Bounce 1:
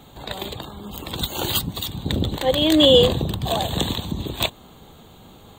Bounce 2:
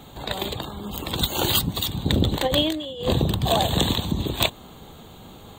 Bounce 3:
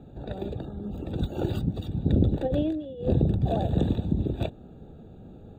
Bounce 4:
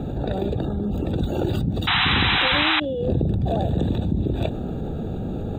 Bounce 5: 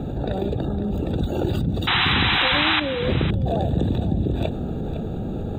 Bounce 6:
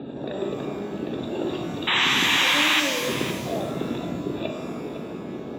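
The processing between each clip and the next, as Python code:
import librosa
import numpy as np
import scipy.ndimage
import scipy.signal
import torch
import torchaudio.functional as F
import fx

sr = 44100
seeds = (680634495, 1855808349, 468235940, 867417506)

y1 = fx.over_compress(x, sr, threshold_db=-20.0, ratio=-0.5)
y2 = np.convolve(y1, np.full(42, 1.0 / 42))[:len(y1)]
y3 = fx.spec_paint(y2, sr, seeds[0], shape='noise', start_s=1.87, length_s=0.93, low_hz=710.0, high_hz=4000.0, level_db=-19.0)
y3 = fx.env_flatten(y3, sr, amount_pct=70)
y3 = y3 * librosa.db_to_amplitude(-3.5)
y4 = y3 + 10.0 ** (-12.5 / 20.0) * np.pad(y3, (int(508 * sr / 1000.0), 0))[:len(y3)]
y5 = fx.cabinet(y4, sr, low_hz=310.0, low_slope=12, high_hz=3800.0, hz=(500.0, 760.0, 1400.0), db=(-5, -8, -7))
y5 = fx.rev_shimmer(y5, sr, seeds[1], rt60_s=1.3, semitones=12, shimmer_db=-8, drr_db=3.0)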